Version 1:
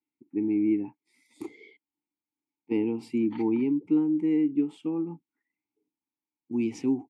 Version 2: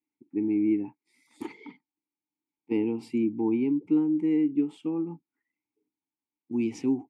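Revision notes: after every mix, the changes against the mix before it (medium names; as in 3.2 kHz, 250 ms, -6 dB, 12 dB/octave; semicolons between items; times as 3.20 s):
second voice: entry -1.90 s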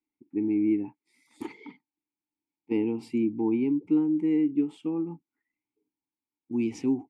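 master: remove high-pass 86 Hz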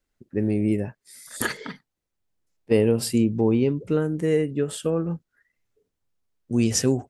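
first voice -5.5 dB; master: remove vowel filter u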